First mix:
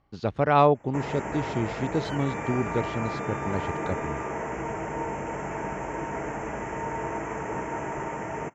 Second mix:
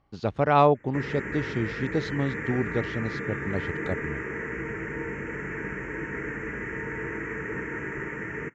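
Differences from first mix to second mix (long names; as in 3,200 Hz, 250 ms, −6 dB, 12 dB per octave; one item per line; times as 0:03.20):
first sound: add drawn EQ curve 460 Hz 0 dB, 700 Hz −22 dB, 1,800 Hz +9 dB, 3,700 Hz −11 dB
second sound −9.5 dB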